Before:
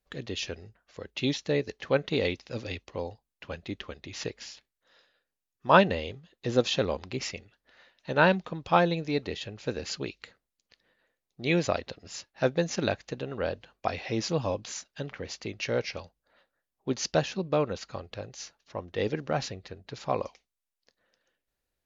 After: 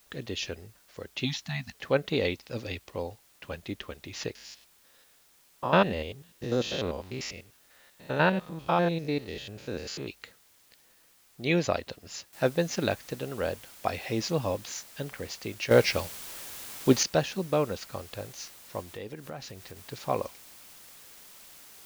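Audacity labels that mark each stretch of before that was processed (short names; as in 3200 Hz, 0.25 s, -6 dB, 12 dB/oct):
1.250000	1.750000	spectral delete 270–640 Hz
4.350000	10.080000	stepped spectrum every 0.1 s
12.330000	12.330000	noise floor step -62 dB -51 dB
15.710000	17.030000	gain +9 dB
18.810000	19.770000	compressor 2.5:1, threshold -41 dBFS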